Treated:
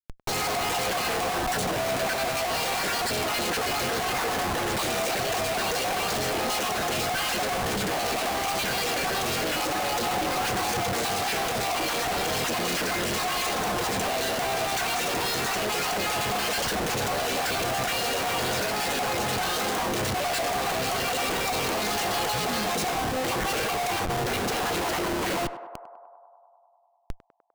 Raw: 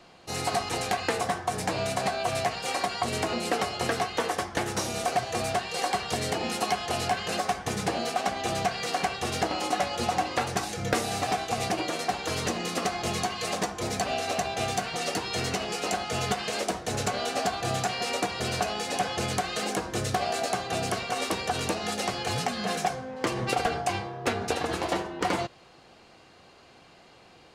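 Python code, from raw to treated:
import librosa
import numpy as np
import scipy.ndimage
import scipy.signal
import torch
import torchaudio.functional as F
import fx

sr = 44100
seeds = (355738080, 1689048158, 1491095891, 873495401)

p1 = fx.spec_dropout(x, sr, seeds[0], share_pct=23)
p2 = scipy.signal.sosfilt(scipy.signal.butter(4, 11000.0, 'lowpass', fs=sr, output='sos'), p1)
p3 = fx.low_shelf(p2, sr, hz=220.0, db=-8.0)
p4 = fx.over_compress(p3, sr, threshold_db=-35.0, ratio=-1.0)
p5 = p3 + F.gain(torch.from_numpy(p4), 1.0).numpy()
p6 = fx.schmitt(p5, sr, flips_db=-36.0)
y = p6 + fx.echo_banded(p6, sr, ms=100, feedback_pct=81, hz=800.0, wet_db=-10.5, dry=0)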